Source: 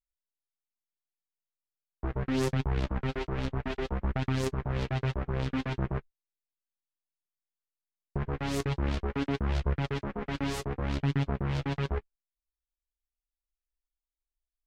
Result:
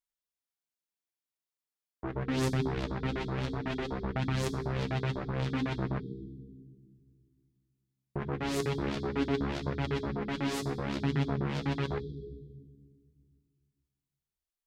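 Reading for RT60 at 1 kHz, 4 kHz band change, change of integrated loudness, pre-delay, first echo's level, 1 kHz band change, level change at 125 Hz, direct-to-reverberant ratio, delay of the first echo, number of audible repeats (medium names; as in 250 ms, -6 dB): 1.9 s, +0.5 dB, -1.0 dB, 3 ms, no echo, 0.0 dB, -2.0 dB, 9.0 dB, no echo, no echo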